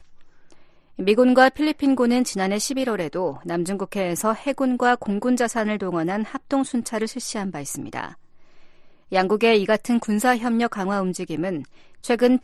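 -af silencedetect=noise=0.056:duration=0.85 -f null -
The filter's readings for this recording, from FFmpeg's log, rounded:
silence_start: 0.00
silence_end: 0.99 | silence_duration: 0.99
silence_start: 8.07
silence_end: 9.12 | silence_duration: 1.05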